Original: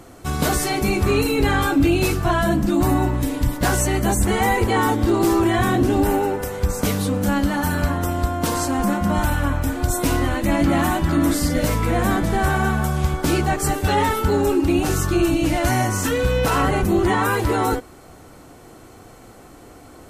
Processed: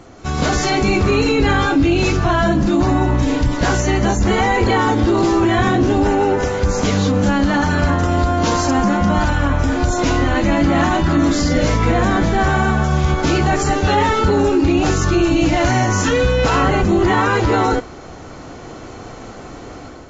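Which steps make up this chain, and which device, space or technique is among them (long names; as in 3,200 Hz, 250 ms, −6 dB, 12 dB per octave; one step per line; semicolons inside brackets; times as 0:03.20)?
low-bitrate web radio (automatic gain control gain up to 8 dB; brickwall limiter −9.5 dBFS, peak gain reduction 7 dB; level +2 dB; AAC 24 kbit/s 16,000 Hz)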